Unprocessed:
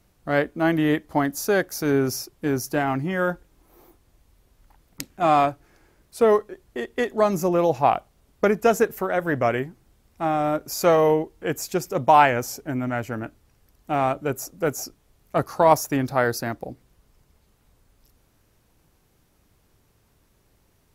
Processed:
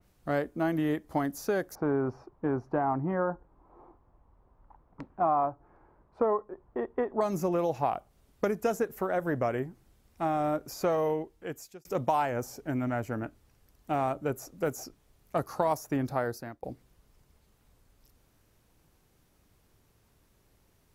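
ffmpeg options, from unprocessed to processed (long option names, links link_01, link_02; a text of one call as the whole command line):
ffmpeg -i in.wav -filter_complex "[0:a]asettb=1/sr,asplit=3[link_01][link_02][link_03];[link_01]atrim=end=1.754[link_04];[link_02]atrim=start=1.75:end=7.21,asetpts=PTS-STARTPTS,afade=type=in:duration=0.004:curve=qsin,afade=type=out:start_time=5.456:duration=0.004:curve=qsin,lowpass=frequency=1000:width_type=q:width=2.6[link_05];[link_03]atrim=start=7.206[link_06];[link_04][link_05]acrossfade=duration=0.004:curve1=hsin:curve2=qsin[link_07];[link_07][link_06]acrossfade=duration=0.004:curve1=qsin:curve2=hsin,asplit=3[link_08][link_09][link_10];[link_08]atrim=end=11.85,asetpts=PTS-STARTPTS,afade=type=out:start_time=10.94:duration=0.91[link_11];[link_09]atrim=start=11.85:end=16.63,asetpts=PTS-STARTPTS,afade=type=in:duration=0.004:curve=hsin,afade=type=out:start_time=4.19:duration=0.59:silence=0.1[link_12];[link_10]atrim=start=16.63,asetpts=PTS-STARTPTS,afade=type=in:duration=0.004:curve=hsin:silence=0.1[link_13];[link_11][link_12][link_13]concat=n=3:v=0:a=1,acrossover=split=1400|4900[link_14][link_15][link_16];[link_14]acompressor=threshold=-22dB:ratio=4[link_17];[link_15]acompressor=threshold=-42dB:ratio=4[link_18];[link_16]acompressor=threshold=-39dB:ratio=4[link_19];[link_17][link_18][link_19]amix=inputs=3:normalize=0,adynamicequalizer=threshold=0.00708:dfrequency=2600:dqfactor=0.7:tfrequency=2600:tqfactor=0.7:attack=5:release=100:ratio=0.375:range=2.5:mode=cutabove:tftype=highshelf,volume=-3.5dB" out.wav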